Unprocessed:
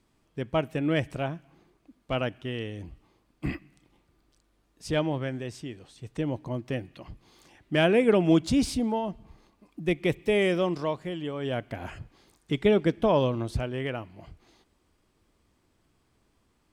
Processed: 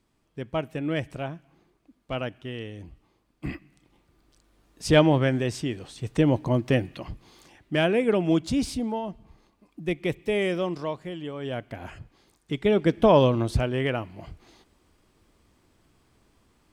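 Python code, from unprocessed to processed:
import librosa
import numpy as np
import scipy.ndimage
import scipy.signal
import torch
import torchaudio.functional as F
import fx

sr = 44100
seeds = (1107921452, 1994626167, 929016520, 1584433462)

y = fx.gain(x, sr, db=fx.line((3.46, -2.0), (4.93, 9.0), (6.86, 9.0), (7.93, -1.5), (12.62, -1.5), (13.05, 5.5)))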